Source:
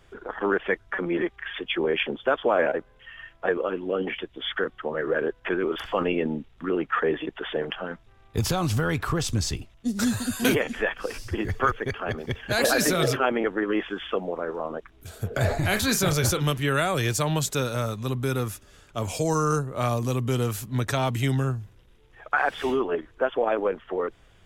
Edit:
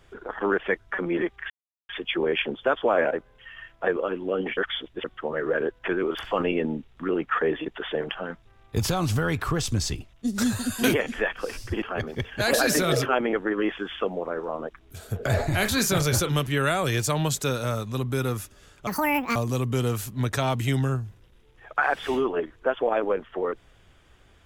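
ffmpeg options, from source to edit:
ffmpeg -i in.wav -filter_complex "[0:a]asplit=7[link_01][link_02][link_03][link_04][link_05][link_06][link_07];[link_01]atrim=end=1.5,asetpts=PTS-STARTPTS,afade=type=out:start_time=1.496:duration=0.004:curve=hsin,apad=pad_dur=0.39[link_08];[link_02]atrim=start=1.5:end=4.182,asetpts=PTS-STARTPTS,afade=type=in:duration=0.004:curve=hsin[link_09];[link_03]atrim=start=4.178:end=4.652,asetpts=PTS-STARTPTS,areverse[link_10];[link_04]atrim=start=4.648:end=11.432[link_11];[link_05]atrim=start=11.928:end=18.984[link_12];[link_06]atrim=start=18.98:end=19.91,asetpts=PTS-STARTPTS,asetrate=84231,aresample=44100[link_13];[link_07]atrim=start=19.906[link_14];[link_08][link_09]concat=n=2:v=0:a=1[link_15];[link_15][link_10]acrossfade=duration=0.004:curve1=hsin:curve2=hsin[link_16];[link_16][link_11]acrossfade=duration=0.004:curve1=hsin:curve2=hsin[link_17];[link_17][link_12]acrossfade=duration=0.004:curve1=hsin:curve2=hsin[link_18];[link_18][link_13]acrossfade=duration=0.004:curve1=hsin:curve2=hsin[link_19];[link_19][link_14]acrossfade=duration=0.004:curve1=hsin:curve2=hsin" out.wav

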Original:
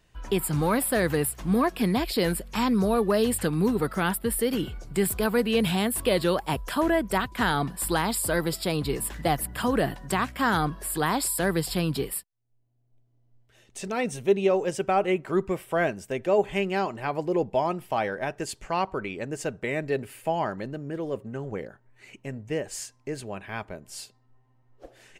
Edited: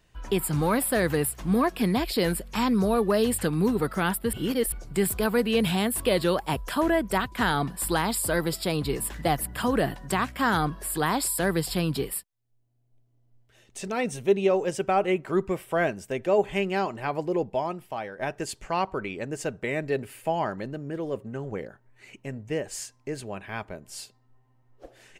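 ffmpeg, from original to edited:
ffmpeg -i in.wav -filter_complex "[0:a]asplit=4[link_01][link_02][link_03][link_04];[link_01]atrim=end=4.332[link_05];[link_02]atrim=start=4.328:end=4.722,asetpts=PTS-STARTPTS,areverse[link_06];[link_03]atrim=start=4.718:end=18.19,asetpts=PTS-STARTPTS,afade=type=out:start_time=12.432:duration=1.04:silence=0.316228[link_07];[link_04]atrim=start=18.19,asetpts=PTS-STARTPTS,afade=type=in:duration=0.004:curve=hsin:silence=0.316228[link_08];[link_05][link_06]acrossfade=duration=0.004:curve1=hsin:curve2=hsin[link_09];[link_07][link_08]concat=n=2:v=0:a=1[link_10];[link_09][link_10]acrossfade=duration=0.004:curve1=hsin:curve2=hsin" out.wav

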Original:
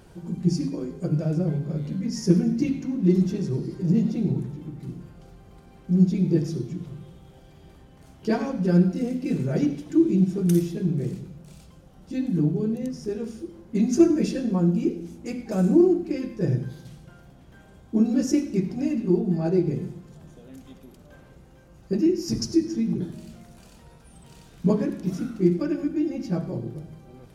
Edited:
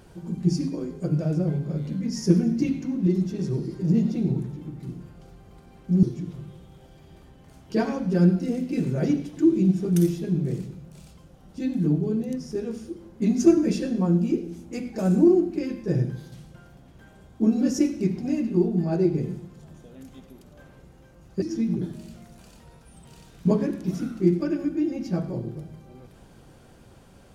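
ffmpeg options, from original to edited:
ffmpeg -i in.wav -filter_complex "[0:a]asplit=5[link_01][link_02][link_03][link_04][link_05];[link_01]atrim=end=3.072[link_06];[link_02]atrim=start=3.068:end=3.392,asetpts=PTS-STARTPTS,volume=-3.5dB[link_07];[link_03]atrim=start=3.388:end=6.032[link_08];[link_04]atrim=start=6.558:end=21.952[link_09];[link_05]atrim=start=22.608[link_10];[link_06][link_07]acrossfade=duration=0.004:curve1=hsin:curve2=hsin[link_11];[link_11][link_08]acrossfade=duration=0.004:curve1=hsin:curve2=hsin[link_12];[link_12][link_09]acrossfade=duration=0.004:curve1=hsin:curve2=hsin[link_13];[link_13][link_10]acrossfade=duration=0.004:curve1=hsin:curve2=hsin" out.wav

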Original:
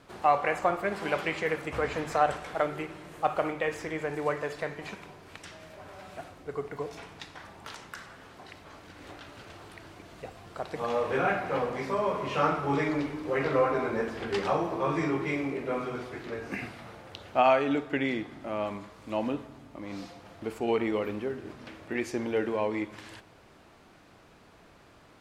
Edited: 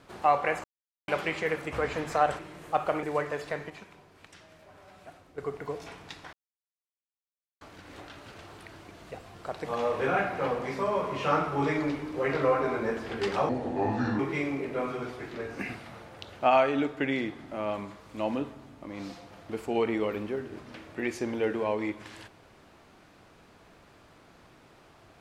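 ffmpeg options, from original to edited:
ffmpeg -i in.wav -filter_complex "[0:a]asplit=11[link_01][link_02][link_03][link_04][link_05][link_06][link_07][link_08][link_09][link_10][link_11];[link_01]atrim=end=0.64,asetpts=PTS-STARTPTS,afade=type=out:start_time=0.636:duration=0.004:curve=hsin[link_12];[link_02]atrim=start=0.64:end=1.08,asetpts=PTS-STARTPTS,volume=0[link_13];[link_03]atrim=start=1.08:end=2.392,asetpts=PTS-STARTPTS,afade=type=in:duration=0.004:curve=hsin[link_14];[link_04]atrim=start=2.888:end=3.532[link_15];[link_05]atrim=start=4.138:end=4.812[link_16];[link_06]atrim=start=4.808:end=6.492,asetpts=PTS-STARTPTS,volume=-7dB[link_17];[link_07]atrim=start=6.488:end=7.44,asetpts=PTS-STARTPTS,afade=type=out:start_time=0.948:duration=0.004:curve=hsin[link_18];[link_08]atrim=start=7.44:end=8.72,asetpts=PTS-STARTPTS,volume=0[link_19];[link_09]atrim=start=8.72:end=14.604,asetpts=PTS-STARTPTS,afade=type=in:duration=0.004:curve=hsin[link_20];[link_10]atrim=start=14.6:end=15.12,asetpts=PTS-STARTPTS,asetrate=32634,aresample=44100,atrim=end_sample=30989,asetpts=PTS-STARTPTS[link_21];[link_11]atrim=start=15.116[link_22];[link_12][link_13][link_14]concat=n=3:v=0:a=1[link_23];[link_23][link_15]acrossfade=duration=0.004:curve1=hsin:curve2=hsin[link_24];[link_24][link_16]acrossfade=duration=0.004:curve1=hsin:curve2=hsin[link_25];[link_25][link_17]acrossfade=duration=0.004:curve1=hsin:curve2=hsin[link_26];[link_18][link_19][link_20]concat=n=3:v=0:a=1[link_27];[link_26][link_27]acrossfade=duration=0.004:curve1=hsin:curve2=hsin[link_28];[link_28][link_21]acrossfade=duration=0.004:curve1=hsin:curve2=hsin[link_29];[link_29][link_22]acrossfade=duration=0.004:curve1=hsin:curve2=hsin" out.wav

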